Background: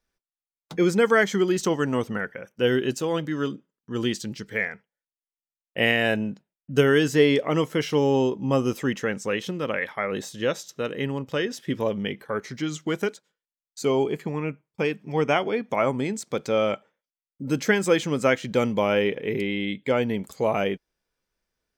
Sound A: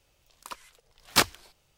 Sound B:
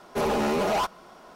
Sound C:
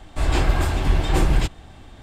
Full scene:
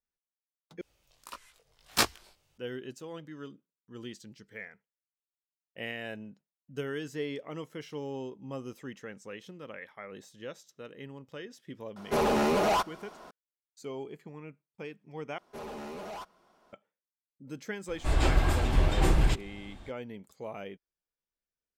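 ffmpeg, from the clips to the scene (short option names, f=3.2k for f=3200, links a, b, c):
-filter_complex "[2:a]asplit=2[a][b];[0:a]volume=-17dB[c];[1:a]flanger=delay=17:depth=4.7:speed=1.6[d];[c]asplit=3[e][f][g];[e]atrim=end=0.814[h];[d]atrim=end=1.77,asetpts=PTS-STARTPTS,volume=-1dB[i];[f]atrim=start=2.576:end=15.384[j];[b]atrim=end=1.35,asetpts=PTS-STARTPTS,volume=-16.5dB[k];[g]atrim=start=16.726[l];[a]atrim=end=1.35,asetpts=PTS-STARTPTS,volume=-1dB,afade=t=in:d=0.004:c=hsin,afade=t=out:st=1.346:d=0.004:c=hsin,adelay=11960[m];[3:a]atrim=end=2.02,asetpts=PTS-STARTPTS,volume=-5.5dB,afade=t=in:d=0.004:c=hsin,afade=t=out:st=2.016:d=0.004:c=hsin,adelay=17880[n];[h][i]acrossfade=d=0.004:c1=hsin:c2=hsin[o];[o][j]acrossfade=d=0.004:c1=hsin:c2=hsin[p];[p][k]acrossfade=d=0.004:c1=hsin:c2=hsin[q];[q][l]acrossfade=d=0.004:c1=hsin:c2=hsin[r];[r][m][n]amix=inputs=3:normalize=0"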